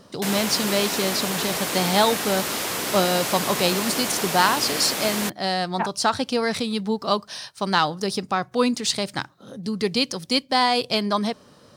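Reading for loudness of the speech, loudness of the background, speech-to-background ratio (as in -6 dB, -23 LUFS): -23.5 LUFS, -25.5 LUFS, 2.0 dB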